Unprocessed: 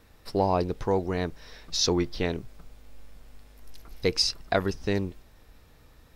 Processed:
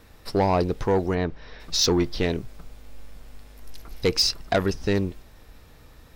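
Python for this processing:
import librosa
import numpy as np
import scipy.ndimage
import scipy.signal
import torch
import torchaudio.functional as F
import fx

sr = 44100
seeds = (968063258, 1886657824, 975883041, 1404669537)

y = 10.0 ** (-18.5 / 20.0) * np.tanh(x / 10.0 ** (-18.5 / 20.0))
y = fx.air_absorb(y, sr, metres=210.0, at=(1.14, 1.59), fade=0.02)
y = F.gain(torch.from_numpy(y), 5.5).numpy()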